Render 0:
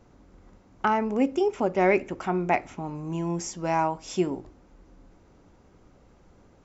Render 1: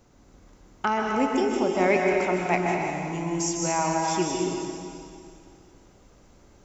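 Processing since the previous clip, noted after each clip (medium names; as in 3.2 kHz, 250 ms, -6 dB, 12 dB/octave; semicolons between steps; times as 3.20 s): treble shelf 3.9 kHz +12 dB; plate-style reverb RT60 2.4 s, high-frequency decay 1×, pre-delay 115 ms, DRR -1 dB; trim -2.5 dB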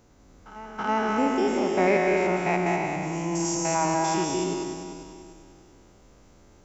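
spectrogram pixelated in time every 100 ms; reverse echo 326 ms -16 dB; trim +1.5 dB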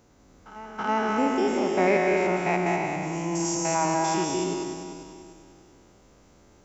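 bass shelf 60 Hz -7 dB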